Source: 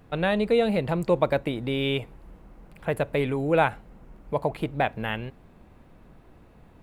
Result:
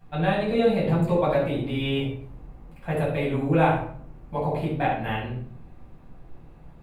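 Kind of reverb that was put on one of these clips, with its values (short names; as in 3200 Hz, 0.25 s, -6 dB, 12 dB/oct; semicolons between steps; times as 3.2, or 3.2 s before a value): shoebox room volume 820 m³, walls furnished, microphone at 8.5 m; gain -10.5 dB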